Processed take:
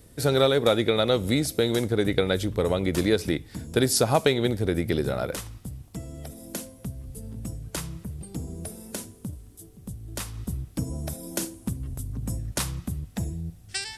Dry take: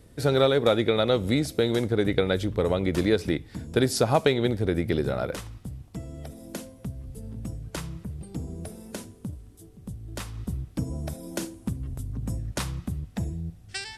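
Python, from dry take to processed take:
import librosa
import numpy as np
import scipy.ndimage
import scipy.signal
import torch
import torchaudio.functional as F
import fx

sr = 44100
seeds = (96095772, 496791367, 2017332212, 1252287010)

y = fx.high_shelf(x, sr, hz=6300.0, db=10.5)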